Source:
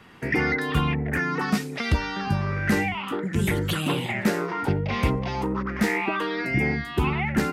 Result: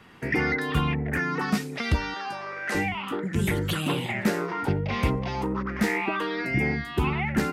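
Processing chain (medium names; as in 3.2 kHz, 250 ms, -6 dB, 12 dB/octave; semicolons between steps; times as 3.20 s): 2.14–2.75 s: Chebyshev band-pass 570–9500 Hz, order 2; trim -1.5 dB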